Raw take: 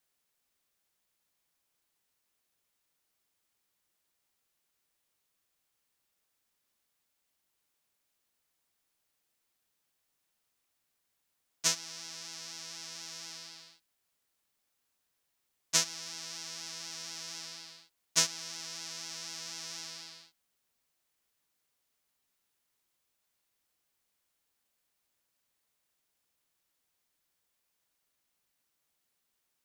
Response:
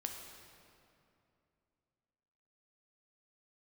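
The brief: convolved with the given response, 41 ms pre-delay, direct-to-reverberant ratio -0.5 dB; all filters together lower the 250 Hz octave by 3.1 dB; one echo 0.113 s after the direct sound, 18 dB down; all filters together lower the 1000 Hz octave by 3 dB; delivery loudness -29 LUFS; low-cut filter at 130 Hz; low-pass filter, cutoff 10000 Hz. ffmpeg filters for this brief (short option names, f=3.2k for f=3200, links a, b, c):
-filter_complex "[0:a]highpass=130,lowpass=10k,equalizer=f=250:t=o:g=-4,equalizer=f=1k:t=o:g=-3.5,aecho=1:1:113:0.126,asplit=2[a][b];[1:a]atrim=start_sample=2205,adelay=41[c];[b][c]afir=irnorm=-1:irlink=0,volume=1.5dB[d];[a][d]amix=inputs=2:normalize=0,volume=4dB"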